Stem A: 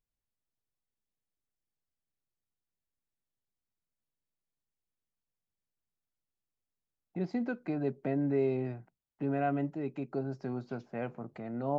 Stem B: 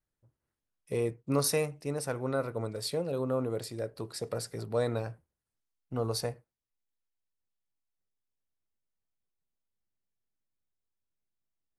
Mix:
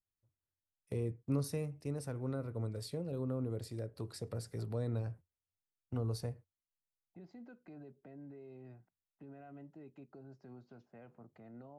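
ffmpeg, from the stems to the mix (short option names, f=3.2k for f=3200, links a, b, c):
-filter_complex "[0:a]bandreject=f=2.3k:w=18,alimiter=level_in=6.5dB:limit=-24dB:level=0:latency=1:release=77,volume=-6.5dB,volume=-14.5dB[a];[1:a]agate=range=-12dB:threshold=-48dB:ratio=16:detection=peak,volume=-2.5dB[b];[a][b]amix=inputs=2:normalize=0,equalizer=f=91:t=o:w=0.32:g=12,acrossover=split=330[c][d];[d]acompressor=threshold=-49dB:ratio=3[e];[c][e]amix=inputs=2:normalize=0"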